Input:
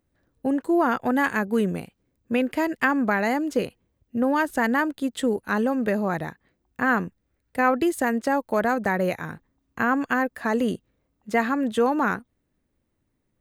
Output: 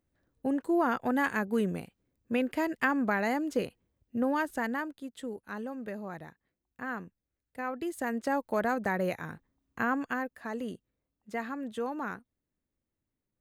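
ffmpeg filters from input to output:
-af "volume=1.33,afade=t=out:st=4.21:d=0.82:silence=0.354813,afade=t=in:st=7.74:d=0.59:silence=0.375837,afade=t=out:st=9.83:d=0.55:silence=0.473151"

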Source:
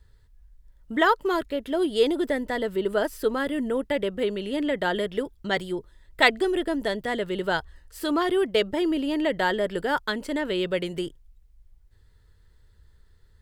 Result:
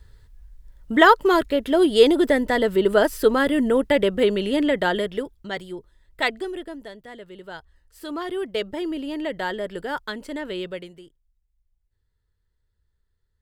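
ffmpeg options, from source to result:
-af "volume=6.68,afade=t=out:st=4.41:d=1.08:silence=0.266073,afade=t=out:st=6.32:d=0.59:silence=0.375837,afade=t=in:st=7.49:d=1.16:silence=0.334965,afade=t=out:st=10.58:d=0.41:silence=0.237137"

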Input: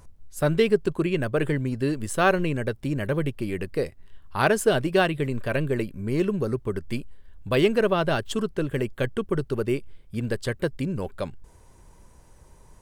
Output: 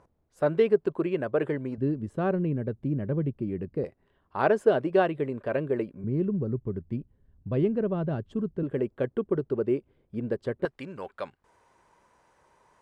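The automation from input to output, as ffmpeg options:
-af "asetnsamples=n=441:p=0,asendcmd='1.78 bandpass f 190;3.84 bandpass f 520;6.04 bandpass f 150;8.63 bandpass f 390;10.65 bandpass f 1300',bandpass=f=600:t=q:w=0.73:csg=0"

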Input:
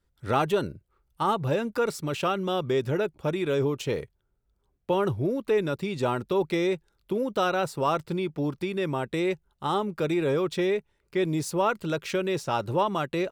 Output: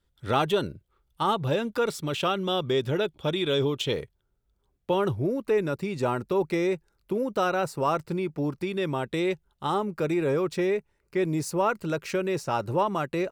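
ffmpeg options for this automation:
-af "asetnsamples=n=441:p=0,asendcmd='2.97 equalizer g 14;3.93 equalizer g 3;5.15 equalizer g -7.5;8.67 equalizer g 2.5;9.7 equalizer g -8',equalizer=f=3400:t=o:w=0.36:g=7.5"

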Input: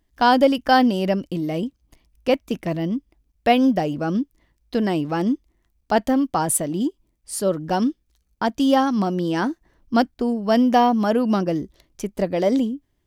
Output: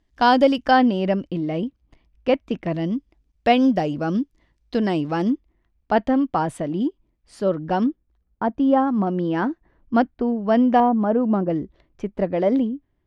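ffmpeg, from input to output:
-af "asetnsamples=n=441:p=0,asendcmd='0.71 lowpass f 3100;2.74 lowpass f 5900;5.3 lowpass f 2800;7.86 lowpass f 1300;9.07 lowpass f 2200;10.8 lowpass f 1100;11.5 lowpass f 2200',lowpass=6100"

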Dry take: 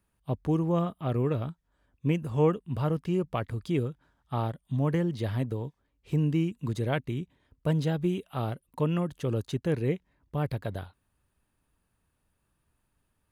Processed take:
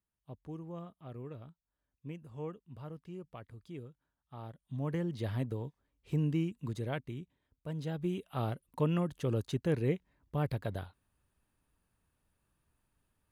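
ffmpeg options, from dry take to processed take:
-af "volume=2.11,afade=t=in:st=4.37:d=0.91:silence=0.237137,afade=t=out:st=6.3:d=1.37:silence=0.334965,afade=t=in:st=7.67:d=0.76:silence=0.266073"

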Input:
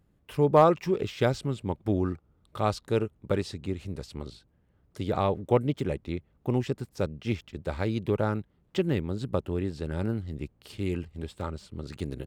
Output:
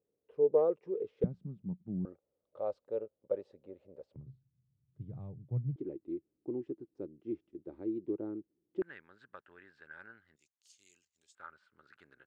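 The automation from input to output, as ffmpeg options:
-af "asetnsamples=n=441:p=0,asendcmd='1.24 bandpass f 180;2.05 bandpass f 540;4.16 bandpass f 130;5.76 bandpass f 330;8.82 bandpass f 1600;10.36 bandpass f 6600;11.35 bandpass f 1500',bandpass=f=460:t=q:w=7.5:csg=0"

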